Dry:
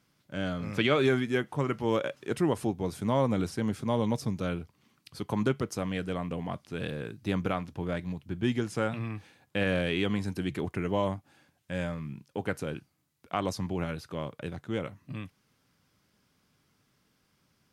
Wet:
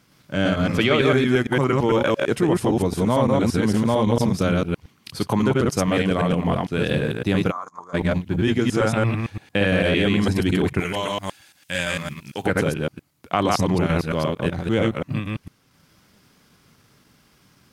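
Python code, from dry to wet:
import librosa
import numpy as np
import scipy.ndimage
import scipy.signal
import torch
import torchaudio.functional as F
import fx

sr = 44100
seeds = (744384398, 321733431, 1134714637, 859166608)

p1 = fx.reverse_delay(x, sr, ms=113, wet_db=-0.5)
p2 = fx.over_compress(p1, sr, threshold_db=-30.0, ratio=-1.0)
p3 = p1 + F.gain(torch.from_numpy(p2), 1.5).numpy()
p4 = fx.transient(p3, sr, attack_db=0, sustain_db=-5)
p5 = fx.double_bandpass(p4, sr, hz=2700.0, octaves=2.6, at=(7.5, 7.93), fade=0.02)
p6 = fx.tilt_shelf(p5, sr, db=-10.0, hz=1500.0, at=(10.8, 12.46))
y = F.gain(torch.from_numpy(p6), 3.0).numpy()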